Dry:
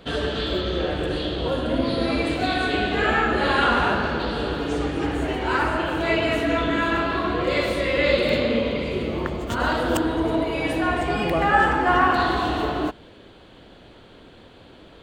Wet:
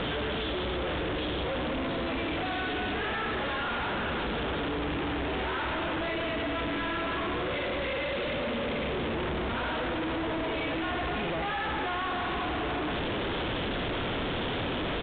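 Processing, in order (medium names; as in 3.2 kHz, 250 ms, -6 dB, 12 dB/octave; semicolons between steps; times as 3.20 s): one-bit comparator; resampled via 8 kHz; trim -7.5 dB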